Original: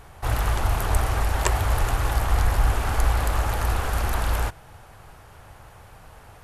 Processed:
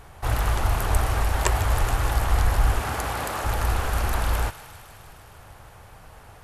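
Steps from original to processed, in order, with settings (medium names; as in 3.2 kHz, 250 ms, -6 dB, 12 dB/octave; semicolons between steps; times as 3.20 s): 2.79–3.43 s: high-pass 79 Hz -> 190 Hz 12 dB/octave; thinning echo 154 ms, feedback 77%, high-pass 900 Hz, level -14 dB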